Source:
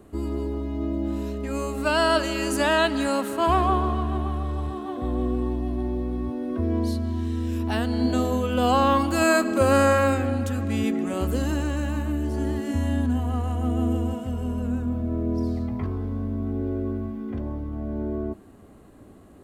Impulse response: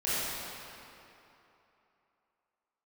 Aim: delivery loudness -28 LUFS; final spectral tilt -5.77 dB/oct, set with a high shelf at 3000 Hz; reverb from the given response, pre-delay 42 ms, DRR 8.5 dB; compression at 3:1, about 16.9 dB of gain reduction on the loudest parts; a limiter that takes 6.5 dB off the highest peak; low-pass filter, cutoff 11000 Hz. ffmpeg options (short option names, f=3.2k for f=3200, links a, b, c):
-filter_complex "[0:a]lowpass=11k,highshelf=f=3k:g=8,acompressor=threshold=-38dB:ratio=3,alimiter=level_in=4dB:limit=-24dB:level=0:latency=1,volume=-4dB,asplit=2[a][b];[1:a]atrim=start_sample=2205,adelay=42[c];[b][c]afir=irnorm=-1:irlink=0,volume=-18.5dB[d];[a][d]amix=inputs=2:normalize=0,volume=9.5dB"